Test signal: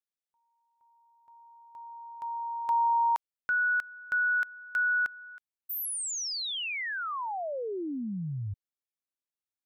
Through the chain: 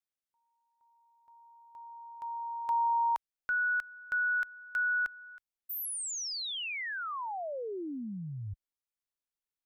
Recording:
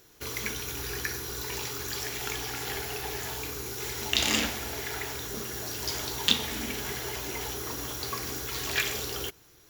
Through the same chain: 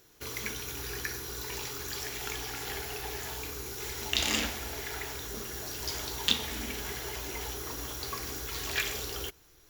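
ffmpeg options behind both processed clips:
-af "asubboost=boost=3.5:cutoff=58,volume=-3dB"

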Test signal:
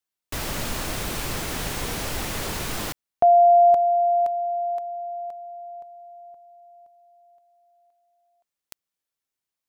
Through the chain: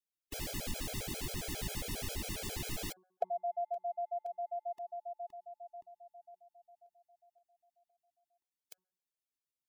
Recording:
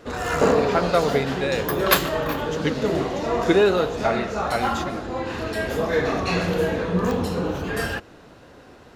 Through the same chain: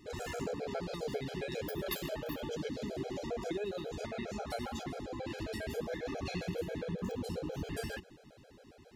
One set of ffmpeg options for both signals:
-af "acompressor=threshold=-27dB:ratio=4:attack=36:release=186:knee=1:detection=peak,equalizer=f=1.2k:t=o:w=0.97:g=-10.5,bandreject=f=184.4:t=h:w=4,bandreject=f=368.8:t=h:w=4,bandreject=f=553.2:t=h:w=4,bandreject=f=737.6:t=h:w=4,bandreject=f=922:t=h:w=4,bandreject=f=1.1064k:t=h:w=4,bandreject=f=1.2908k:t=h:w=4,bandreject=f=1.4752k:t=h:w=4,bandreject=f=1.6596k:t=h:w=4,afftfilt=real='re*gt(sin(2*PI*7.4*pts/sr)*(1-2*mod(floor(b*sr/1024/430),2)),0)':imag='im*gt(sin(2*PI*7.4*pts/sr)*(1-2*mod(floor(b*sr/1024/430),2)),0)':win_size=1024:overlap=0.75,volume=-6dB"

